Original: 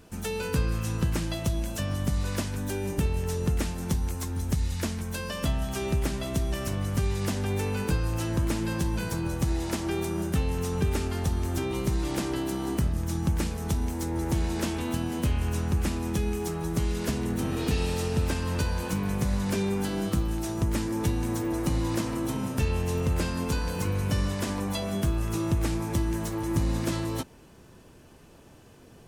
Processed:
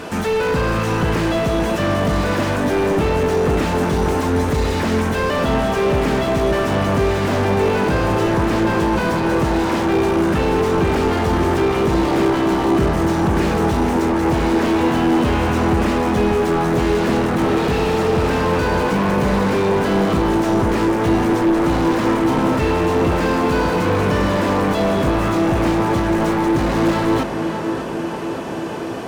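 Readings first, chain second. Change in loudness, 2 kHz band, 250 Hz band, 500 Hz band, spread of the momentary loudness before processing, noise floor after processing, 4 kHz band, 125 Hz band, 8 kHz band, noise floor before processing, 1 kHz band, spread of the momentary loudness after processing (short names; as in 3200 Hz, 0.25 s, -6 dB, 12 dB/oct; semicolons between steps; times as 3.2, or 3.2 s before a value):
+11.5 dB, +15.0 dB, +12.5 dB, +16.5 dB, 3 LU, -23 dBFS, +9.5 dB, +6.5 dB, +3.0 dB, -52 dBFS, +18.0 dB, 2 LU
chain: overdrive pedal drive 33 dB, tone 1500 Hz, clips at -14 dBFS; tape echo 0.584 s, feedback 90%, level -5 dB, low-pass 1100 Hz; slew limiter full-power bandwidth 86 Hz; gain +4.5 dB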